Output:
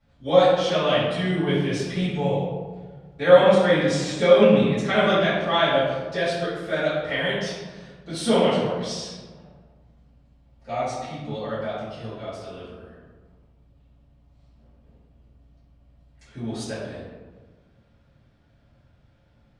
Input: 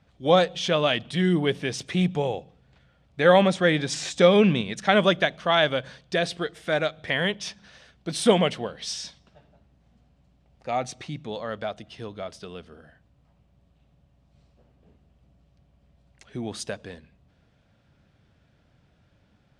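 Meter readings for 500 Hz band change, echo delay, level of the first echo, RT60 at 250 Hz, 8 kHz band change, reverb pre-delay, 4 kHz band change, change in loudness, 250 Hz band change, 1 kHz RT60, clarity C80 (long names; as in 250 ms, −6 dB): +3.5 dB, no echo audible, no echo audible, 1.8 s, −2.5 dB, 4 ms, −0.5 dB, +2.0 dB, +1.0 dB, 1.4 s, 2.0 dB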